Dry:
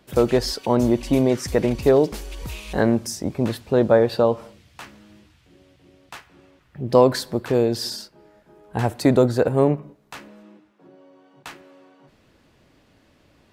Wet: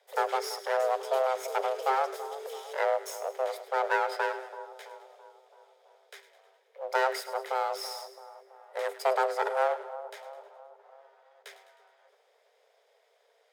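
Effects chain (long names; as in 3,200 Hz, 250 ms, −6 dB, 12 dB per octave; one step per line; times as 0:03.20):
lower of the sound and its delayed copy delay 0.64 ms
echo with a time of its own for lows and highs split 870 Hz, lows 332 ms, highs 104 ms, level −13.5 dB
frequency shifter +390 Hz
level −9 dB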